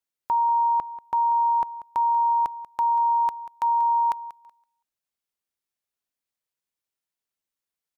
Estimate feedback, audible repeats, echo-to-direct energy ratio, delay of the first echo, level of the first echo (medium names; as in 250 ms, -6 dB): 24%, 2, -15.5 dB, 188 ms, -15.5 dB